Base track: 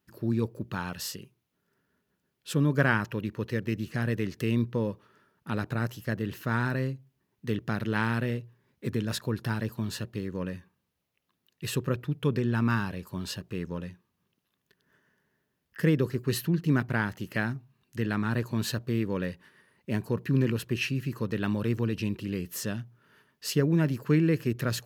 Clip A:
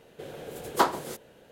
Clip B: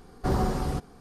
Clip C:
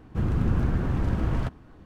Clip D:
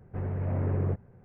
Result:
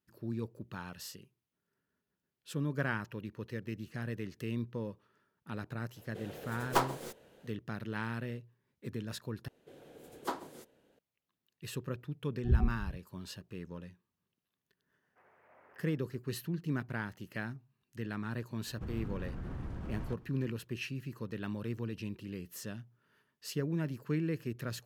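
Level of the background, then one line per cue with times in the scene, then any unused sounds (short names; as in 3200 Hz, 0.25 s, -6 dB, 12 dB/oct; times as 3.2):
base track -10 dB
5.96 add A -6 dB + tracing distortion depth 0.15 ms
9.48 replace with A -15 dB + bell 280 Hz +7 dB 0.55 oct
12.2 add B -2 dB + spectral expander 4:1
15.02 add D -13.5 dB + HPF 1100 Hz
18.66 add C -10 dB + limiter -23 dBFS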